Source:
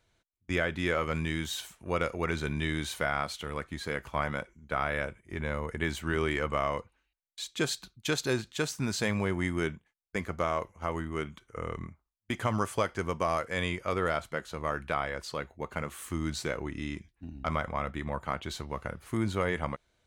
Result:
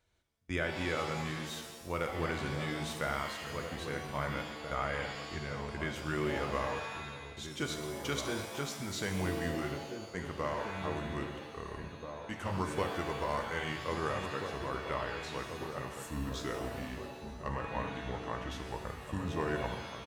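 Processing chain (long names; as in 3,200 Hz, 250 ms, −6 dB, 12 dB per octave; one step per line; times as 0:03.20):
pitch glide at a constant tempo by −3 semitones starting unshifted
slap from a distant wall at 280 metres, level −7 dB
reverb with rising layers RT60 1.2 s, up +7 semitones, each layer −2 dB, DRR 6 dB
level −5.5 dB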